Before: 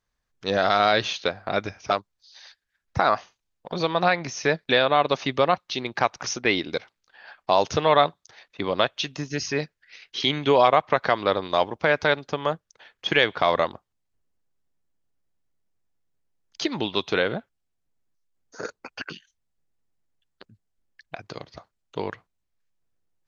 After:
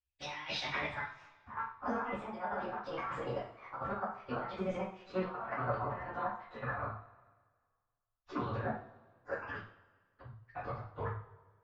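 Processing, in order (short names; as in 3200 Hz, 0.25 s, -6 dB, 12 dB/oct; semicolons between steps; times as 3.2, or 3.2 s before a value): gliding pitch shift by +7 st ending unshifted; treble ducked by the level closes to 2900 Hz, closed at -21.5 dBFS; de-hum 225.7 Hz, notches 9; gate with hold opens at -56 dBFS; EQ curve 110 Hz 0 dB, 160 Hz -19 dB, 1200 Hz -15 dB, 5300 Hz -10 dB; negative-ratio compressor -44 dBFS, ratio -0.5; low-pass sweep 3200 Hz -> 1200 Hz, 1.14–2.31; plain phase-vocoder stretch 0.5×; two-slope reverb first 0.44 s, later 1.7 s, from -20 dB, DRR -5.5 dB; gain +4.5 dB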